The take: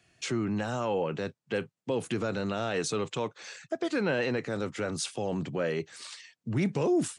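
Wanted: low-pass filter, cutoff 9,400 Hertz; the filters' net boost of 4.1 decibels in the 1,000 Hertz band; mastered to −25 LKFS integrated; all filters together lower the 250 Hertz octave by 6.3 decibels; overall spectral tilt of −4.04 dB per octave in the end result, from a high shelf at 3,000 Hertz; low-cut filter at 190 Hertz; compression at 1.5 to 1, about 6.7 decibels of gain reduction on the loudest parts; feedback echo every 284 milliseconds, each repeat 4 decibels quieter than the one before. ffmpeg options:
ffmpeg -i in.wav -af "highpass=190,lowpass=9400,equalizer=frequency=250:width_type=o:gain=-8,equalizer=frequency=1000:width_type=o:gain=6.5,highshelf=frequency=3000:gain=-4,acompressor=threshold=-44dB:ratio=1.5,aecho=1:1:284|568|852|1136|1420|1704|1988|2272|2556:0.631|0.398|0.25|0.158|0.0994|0.0626|0.0394|0.0249|0.0157,volume=12dB" out.wav

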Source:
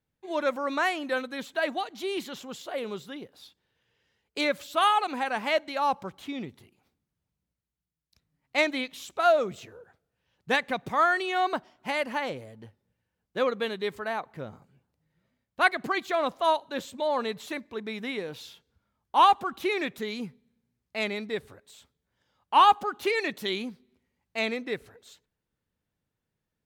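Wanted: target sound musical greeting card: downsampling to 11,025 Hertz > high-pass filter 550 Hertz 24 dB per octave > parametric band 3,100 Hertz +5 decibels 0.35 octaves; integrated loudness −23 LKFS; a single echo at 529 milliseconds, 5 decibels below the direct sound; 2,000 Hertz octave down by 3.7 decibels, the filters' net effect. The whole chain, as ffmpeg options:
ffmpeg -i in.wav -af "equalizer=frequency=2000:width_type=o:gain=-5.5,aecho=1:1:529:0.562,aresample=11025,aresample=44100,highpass=frequency=550:width=0.5412,highpass=frequency=550:width=1.3066,equalizer=frequency=3100:width_type=o:width=0.35:gain=5,volume=6dB" out.wav

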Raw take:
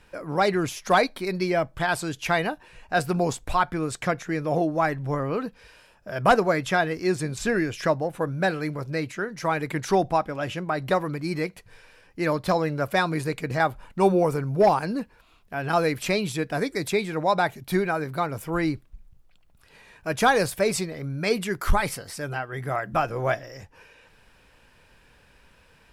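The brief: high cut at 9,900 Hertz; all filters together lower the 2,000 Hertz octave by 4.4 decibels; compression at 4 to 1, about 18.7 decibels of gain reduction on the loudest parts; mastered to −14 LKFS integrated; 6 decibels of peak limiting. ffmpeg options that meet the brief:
ffmpeg -i in.wav -af "lowpass=9900,equalizer=frequency=2000:width_type=o:gain=-6,acompressor=threshold=-38dB:ratio=4,volume=27dB,alimiter=limit=-3.5dB:level=0:latency=1" out.wav

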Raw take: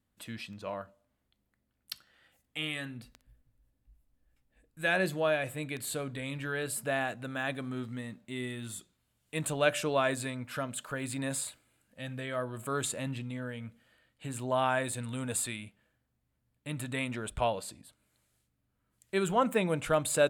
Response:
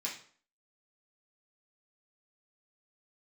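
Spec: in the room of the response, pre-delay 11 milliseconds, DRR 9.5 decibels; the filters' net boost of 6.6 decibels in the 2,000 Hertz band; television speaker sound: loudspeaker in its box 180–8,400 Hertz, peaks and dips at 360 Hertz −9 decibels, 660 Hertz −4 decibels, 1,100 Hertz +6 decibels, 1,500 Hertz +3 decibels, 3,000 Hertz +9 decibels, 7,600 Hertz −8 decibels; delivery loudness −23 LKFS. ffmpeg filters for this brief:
-filter_complex "[0:a]equalizer=frequency=2000:width_type=o:gain=5,asplit=2[link_01][link_02];[1:a]atrim=start_sample=2205,adelay=11[link_03];[link_02][link_03]afir=irnorm=-1:irlink=0,volume=-11.5dB[link_04];[link_01][link_04]amix=inputs=2:normalize=0,highpass=frequency=180:width=0.5412,highpass=frequency=180:width=1.3066,equalizer=frequency=360:width_type=q:width=4:gain=-9,equalizer=frequency=660:width_type=q:width=4:gain=-4,equalizer=frequency=1100:width_type=q:width=4:gain=6,equalizer=frequency=1500:width_type=q:width=4:gain=3,equalizer=frequency=3000:width_type=q:width=4:gain=9,equalizer=frequency=7600:width_type=q:width=4:gain=-8,lowpass=frequency=8400:width=0.5412,lowpass=frequency=8400:width=1.3066,volume=7.5dB"

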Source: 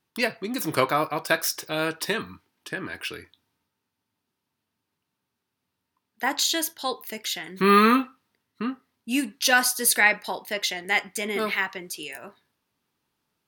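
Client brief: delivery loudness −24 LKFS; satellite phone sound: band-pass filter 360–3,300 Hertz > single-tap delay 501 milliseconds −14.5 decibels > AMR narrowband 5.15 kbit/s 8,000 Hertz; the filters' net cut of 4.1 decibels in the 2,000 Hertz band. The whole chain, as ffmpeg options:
ffmpeg -i in.wav -af "highpass=360,lowpass=3300,equalizer=frequency=2000:width_type=o:gain=-4.5,aecho=1:1:501:0.188,volume=5.5dB" -ar 8000 -c:a libopencore_amrnb -b:a 5150 out.amr

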